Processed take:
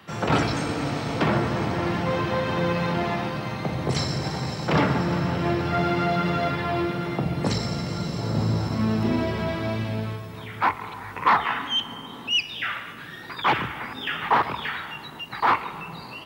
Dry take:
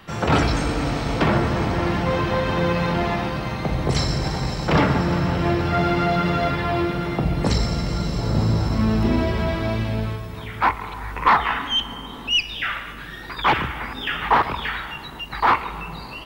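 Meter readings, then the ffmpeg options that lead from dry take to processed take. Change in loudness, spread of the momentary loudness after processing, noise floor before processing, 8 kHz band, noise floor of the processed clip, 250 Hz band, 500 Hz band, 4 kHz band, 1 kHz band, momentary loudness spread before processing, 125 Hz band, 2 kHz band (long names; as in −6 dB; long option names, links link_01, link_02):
−3.5 dB, 11 LU, −36 dBFS, −3.0 dB, −39 dBFS, −3.0 dB, −3.0 dB, −3.0 dB, −3.0 dB, 10 LU, −4.0 dB, −3.0 dB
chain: -af "highpass=frequency=91:width=0.5412,highpass=frequency=91:width=1.3066,volume=-3dB"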